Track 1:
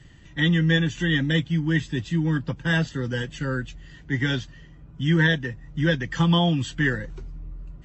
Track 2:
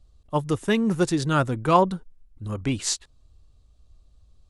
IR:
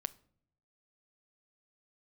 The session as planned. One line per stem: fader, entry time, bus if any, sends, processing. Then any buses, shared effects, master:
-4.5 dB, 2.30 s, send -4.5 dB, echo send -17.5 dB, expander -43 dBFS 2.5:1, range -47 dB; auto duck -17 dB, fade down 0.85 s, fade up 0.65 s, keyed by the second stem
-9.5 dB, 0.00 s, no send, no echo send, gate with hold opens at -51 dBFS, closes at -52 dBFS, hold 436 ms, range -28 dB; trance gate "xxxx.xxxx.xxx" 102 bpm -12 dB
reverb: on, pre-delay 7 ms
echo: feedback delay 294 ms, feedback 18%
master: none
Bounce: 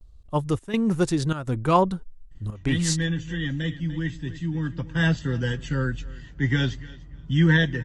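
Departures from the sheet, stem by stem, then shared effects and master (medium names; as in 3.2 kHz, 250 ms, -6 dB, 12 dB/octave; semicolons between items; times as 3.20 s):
stem 2 -9.5 dB -> -1.5 dB; master: extra bass shelf 110 Hz +9 dB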